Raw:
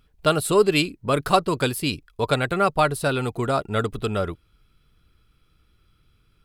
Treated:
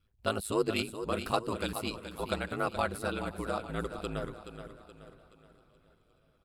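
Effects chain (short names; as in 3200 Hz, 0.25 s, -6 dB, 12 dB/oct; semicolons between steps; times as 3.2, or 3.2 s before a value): ring modulator 54 Hz; feedback echo 0.425 s, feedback 43%, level -10 dB; warbling echo 0.514 s, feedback 58%, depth 125 cents, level -23 dB; gain -9 dB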